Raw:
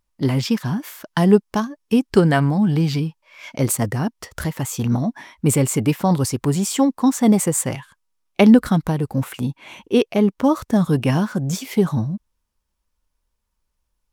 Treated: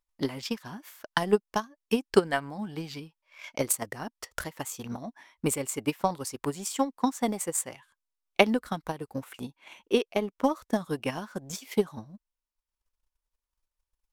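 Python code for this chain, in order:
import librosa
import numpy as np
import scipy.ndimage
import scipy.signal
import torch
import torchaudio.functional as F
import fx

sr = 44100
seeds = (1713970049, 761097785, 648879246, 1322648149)

y = fx.peak_eq(x, sr, hz=120.0, db=-13.5, octaves=2.4)
y = fx.transient(y, sr, attack_db=11, sustain_db=-4)
y = y * librosa.db_to_amplitude(-11.0)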